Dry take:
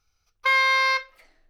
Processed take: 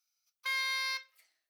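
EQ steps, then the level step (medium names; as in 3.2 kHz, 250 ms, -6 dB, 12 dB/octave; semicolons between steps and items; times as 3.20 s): differentiator; -2.5 dB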